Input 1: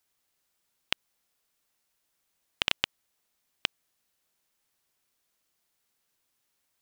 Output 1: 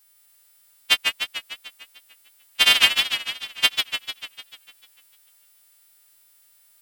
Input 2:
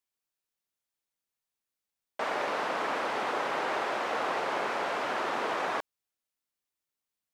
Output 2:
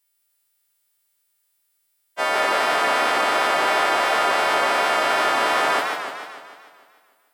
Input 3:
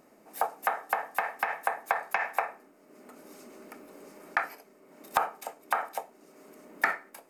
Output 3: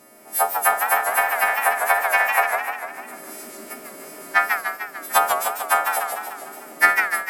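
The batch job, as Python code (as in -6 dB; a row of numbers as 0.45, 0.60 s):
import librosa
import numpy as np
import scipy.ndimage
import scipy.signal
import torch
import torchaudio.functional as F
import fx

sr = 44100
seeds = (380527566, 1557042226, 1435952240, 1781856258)

y = fx.freq_snap(x, sr, grid_st=2)
y = fx.doubler(y, sr, ms=13.0, db=-9)
y = fx.echo_warbled(y, sr, ms=149, feedback_pct=60, rate_hz=2.8, cents=172, wet_db=-5)
y = y * librosa.db_to_amplitude(7.0)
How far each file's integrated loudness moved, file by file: +12.5, +12.0, +11.5 LU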